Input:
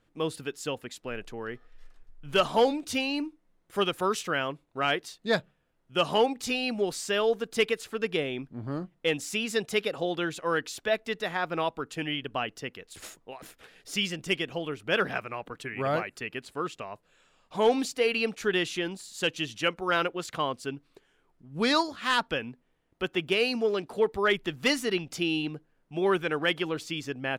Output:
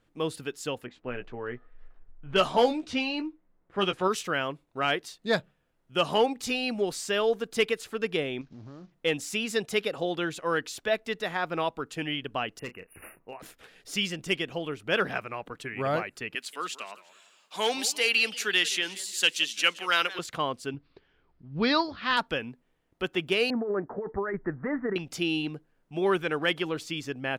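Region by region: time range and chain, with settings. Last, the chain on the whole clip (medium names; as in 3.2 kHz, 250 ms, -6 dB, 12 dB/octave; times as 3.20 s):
0.86–4.08 s: level-controlled noise filter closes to 1.5 kHz, open at -19.5 dBFS + doubling 16 ms -7 dB
8.41–8.92 s: CVSD coder 32 kbps + compression 4:1, threshold -43 dBFS
12.59–13.40 s: brick-wall FIR band-stop 2.9–9.5 kHz + overload inside the chain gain 31.5 dB + doubling 33 ms -12 dB
16.35–20.19 s: steep high-pass 170 Hz 48 dB/octave + tilt shelf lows -10 dB, about 1.2 kHz + modulated delay 175 ms, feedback 42%, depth 203 cents, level -17 dB
20.74–22.17 s: Chebyshev low-pass 4.9 kHz, order 4 + peaking EQ 63 Hz +11 dB 2.2 oct
23.50–24.96 s: steep low-pass 1.9 kHz 72 dB/octave + compressor with a negative ratio -29 dBFS
whole clip: none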